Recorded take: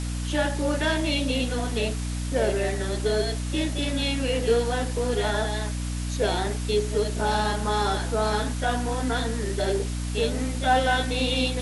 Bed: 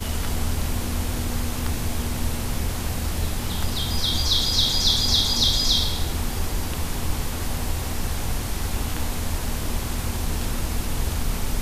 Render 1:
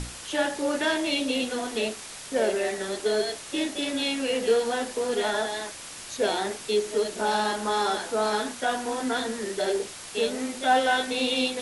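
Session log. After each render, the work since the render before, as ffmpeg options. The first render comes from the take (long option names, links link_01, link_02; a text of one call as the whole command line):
ffmpeg -i in.wav -af "bandreject=frequency=60:width_type=h:width=6,bandreject=frequency=120:width_type=h:width=6,bandreject=frequency=180:width_type=h:width=6,bandreject=frequency=240:width_type=h:width=6,bandreject=frequency=300:width_type=h:width=6" out.wav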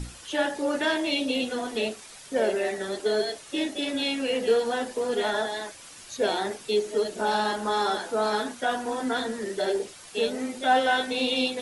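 ffmpeg -i in.wav -af "afftdn=noise_reduction=8:noise_floor=-41" out.wav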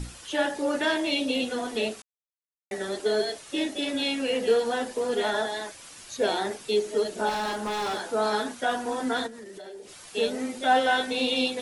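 ffmpeg -i in.wav -filter_complex "[0:a]asettb=1/sr,asplit=3[link_01][link_02][link_03];[link_01]atrim=end=7.294[link_04];[link_02]atrim=start=7.29:end=8.01,asetpts=PTS-STARTPTS,afade=type=in:duration=0.004:curve=qsin,afade=type=out:start_time=0.716:duration=0.004:curve=qsin,asoftclip=type=hard:threshold=-26.5dB[link_05];[link_03]atrim=start=8.006[link_06];[link_04][link_05]acrossfade=duration=0.004:curve1=hsin:curve2=qsin[link_07];[link_07][link_06]acrossfade=duration=0.004:curve1=qsin:curve2=hsin,asplit=3[link_08][link_09][link_10];[link_08]afade=type=out:start_time=9.26:duration=0.02[link_11];[link_09]acompressor=threshold=-40dB:ratio=6:attack=3.2:release=140:knee=1:detection=peak,afade=type=in:start_time=9.26:duration=0.02,afade=type=out:start_time=9.96:duration=0.02[link_12];[link_10]afade=type=in:start_time=9.96:duration=0.02[link_13];[link_11][link_12][link_13]amix=inputs=3:normalize=0,asplit=3[link_14][link_15][link_16];[link_14]atrim=end=2.02,asetpts=PTS-STARTPTS,afade=type=out:start_time=2.016:duration=0.004:curve=hsin[link_17];[link_15]atrim=start=2.02:end=2.71,asetpts=PTS-STARTPTS,volume=0[link_18];[link_16]atrim=start=2.71,asetpts=PTS-STARTPTS,afade=type=in:duration=0.004:curve=hsin[link_19];[link_17][link_18][link_19]concat=n=3:v=0:a=1" out.wav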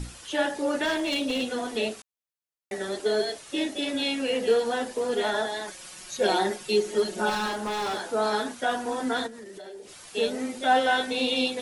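ffmpeg -i in.wav -filter_complex "[0:a]asettb=1/sr,asplit=3[link_01][link_02][link_03];[link_01]atrim=end=0.854[link_04];[link_02]atrim=start=0.85:end=1.44,asetpts=PTS-STARTPTS,afade=type=in:duration=0.004:curve=qsin,afade=type=out:start_time=0.586:duration=0.004:curve=qsin,asoftclip=type=hard:threshold=-22.5dB[link_05];[link_03]atrim=start=1.436[link_06];[link_04][link_05]acrossfade=duration=0.004:curve1=hsin:curve2=qsin[link_07];[link_07][link_06]acrossfade=duration=0.004:curve1=qsin:curve2=hsin,asettb=1/sr,asplit=3[link_08][link_09][link_10];[link_08]atrim=end=5.674[link_11];[link_09]atrim=start=5.67:end=7.48,asetpts=PTS-STARTPTS,afade=type=in:duration=0.004:curve=qsin,afade=type=out:start_time=1.806:duration=0.004:curve=qsin,aecho=1:1:5.5:0.87,atrim=end_sample=79821[link_12];[link_10]atrim=start=7.476[link_13];[link_11][link_12]acrossfade=duration=0.004:curve1=hsin:curve2=qsin[link_14];[link_14][link_13]acrossfade=duration=0.004:curve1=qsin:curve2=hsin" out.wav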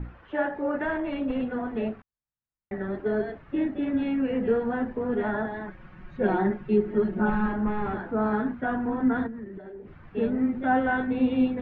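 ffmpeg -i in.wav -af "lowpass=frequency=1800:width=0.5412,lowpass=frequency=1800:width=1.3066,asubboost=boost=8:cutoff=190" out.wav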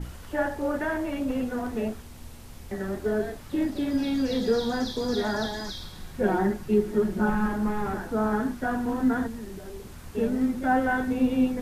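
ffmpeg -i in.wav -i bed.wav -filter_complex "[1:a]volume=-18.5dB[link_01];[0:a][link_01]amix=inputs=2:normalize=0" out.wav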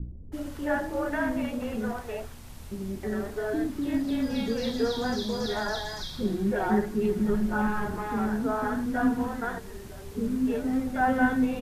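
ffmpeg -i in.wav -filter_complex "[0:a]acrossover=split=390[link_01][link_02];[link_02]adelay=320[link_03];[link_01][link_03]amix=inputs=2:normalize=0" out.wav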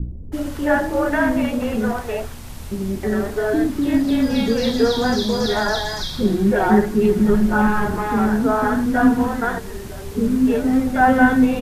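ffmpeg -i in.wav -af "volume=10dB,alimiter=limit=-2dB:level=0:latency=1" out.wav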